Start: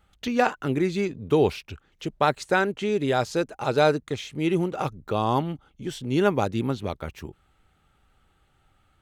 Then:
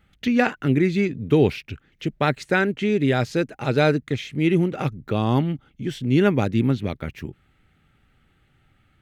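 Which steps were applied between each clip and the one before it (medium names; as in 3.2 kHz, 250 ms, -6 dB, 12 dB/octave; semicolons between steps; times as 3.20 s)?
graphic EQ 125/250/1000/2000/8000 Hz +7/+6/-6/+8/-4 dB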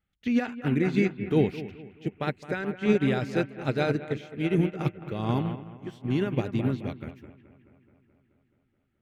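peak limiter -13 dBFS, peak gain reduction 8.5 dB; on a send: bucket-brigade echo 214 ms, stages 4096, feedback 69%, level -6.5 dB; on the sum: upward expansion 2.5:1, over -31 dBFS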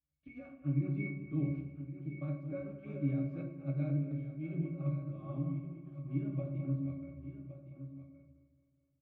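pitch-class resonator C#, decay 0.3 s; delay 1117 ms -12 dB; simulated room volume 110 m³, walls mixed, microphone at 0.66 m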